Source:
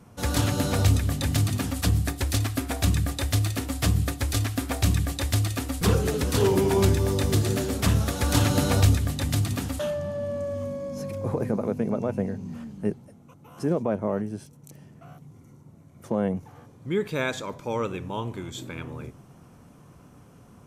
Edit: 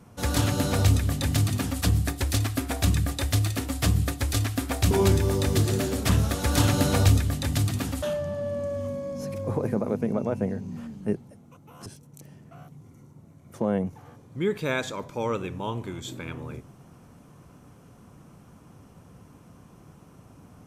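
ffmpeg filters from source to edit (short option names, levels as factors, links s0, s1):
-filter_complex "[0:a]asplit=3[s0][s1][s2];[s0]atrim=end=4.912[s3];[s1]atrim=start=6.678:end=13.632[s4];[s2]atrim=start=14.358[s5];[s3][s4]acrossfade=d=0.004:c1=hsin:c2=hsin[s6];[s6][s5]acrossfade=d=0.004:c1=hsin:c2=hsin"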